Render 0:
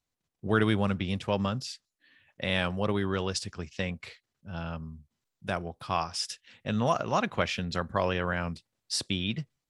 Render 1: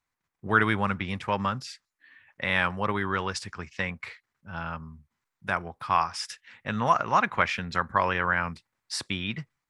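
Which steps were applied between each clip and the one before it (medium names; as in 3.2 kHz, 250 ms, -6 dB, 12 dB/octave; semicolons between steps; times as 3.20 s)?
high-order bell 1.4 kHz +10 dB; trim -2 dB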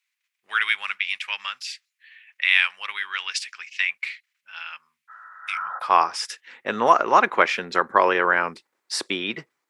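spectral replace 5.12–5.77 s, 210–2000 Hz after; high-pass sweep 2.5 kHz -> 370 Hz, 5.40–5.97 s; trim +5 dB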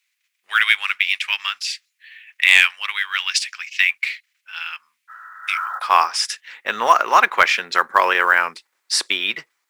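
tilt shelf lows -9.5 dB, about 650 Hz; short-mantissa float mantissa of 4-bit; trim -1 dB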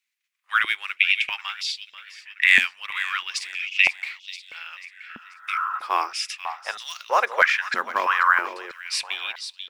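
on a send: feedback delay 488 ms, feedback 48%, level -12 dB; on the sum: step-sequenced high-pass 3.1 Hz 230–3700 Hz; trim -9.5 dB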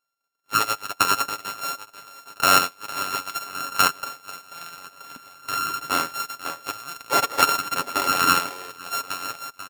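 sorted samples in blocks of 32 samples; comb 7.1 ms, depth 44%; trim -1 dB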